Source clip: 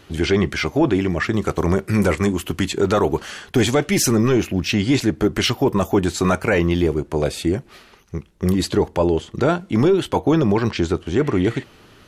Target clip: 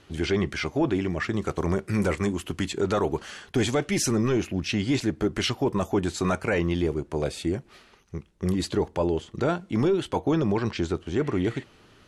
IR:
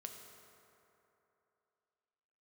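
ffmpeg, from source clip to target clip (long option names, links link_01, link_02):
-af "lowpass=frequency=11000:width=0.5412,lowpass=frequency=11000:width=1.3066,volume=-7dB"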